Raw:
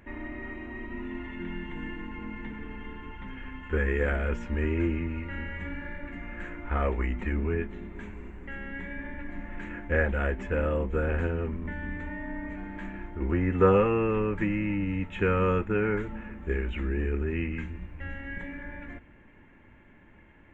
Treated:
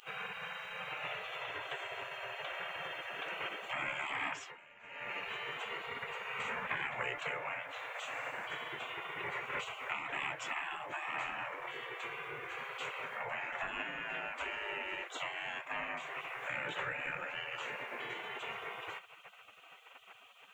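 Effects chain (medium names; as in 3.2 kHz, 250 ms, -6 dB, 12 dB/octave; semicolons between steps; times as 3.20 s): 5.82–6.73 s: peaking EQ 350 Hz +13 dB 0.32 oct; compression 5:1, threshold -35 dBFS, peak gain reduction 17.5 dB; spectral gate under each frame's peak -25 dB weak; bass shelf 87 Hz -9 dB; 4.27–5.13 s: dip -19 dB, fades 0.31 s; trim +17 dB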